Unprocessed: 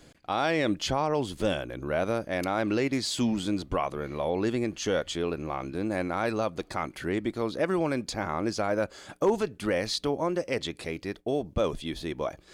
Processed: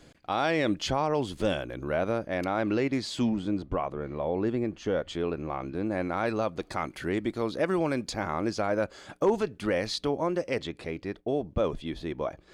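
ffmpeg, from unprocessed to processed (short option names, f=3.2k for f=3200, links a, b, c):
-af "asetnsamples=n=441:p=0,asendcmd='1.96 lowpass f 2900;3.29 lowpass f 1100;5.08 lowpass f 2200;6.02 lowpass f 4200;6.62 lowpass f 11000;8.47 lowpass f 5300;10.63 lowpass f 2200',lowpass=f=7k:p=1"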